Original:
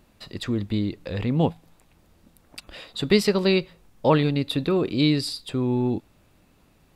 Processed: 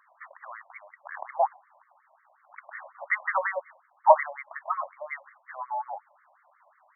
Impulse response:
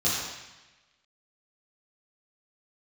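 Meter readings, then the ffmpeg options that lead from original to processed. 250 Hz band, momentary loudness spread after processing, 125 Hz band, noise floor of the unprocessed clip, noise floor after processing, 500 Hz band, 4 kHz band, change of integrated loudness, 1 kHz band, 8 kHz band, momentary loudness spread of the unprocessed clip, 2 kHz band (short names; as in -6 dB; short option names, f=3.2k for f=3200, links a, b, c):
under -40 dB, 23 LU, under -40 dB, -60 dBFS, -66 dBFS, -6.0 dB, under -40 dB, -4.5 dB, +7.0 dB, under -40 dB, 12 LU, +1.5 dB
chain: -af "lowpass=2.5k,apsyclip=9.5dB,afftfilt=real='re*between(b*sr/1024,760*pow(1600/760,0.5+0.5*sin(2*PI*5.5*pts/sr))/1.41,760*pow(1600/760,0.5+0.5*sin(2*PI*5.5*pts/sr))*1.41)':imag='im*between(b*sr/1024,760*pow(1600/760,0.5+0.5*sin(2*PI*5.5*pts/sr))/1.41,760*pow(1600/760,0.5+0.5*sin(2*PI*5.5*pts/sr))*1.41)':win_size=1024:overlap=0.75"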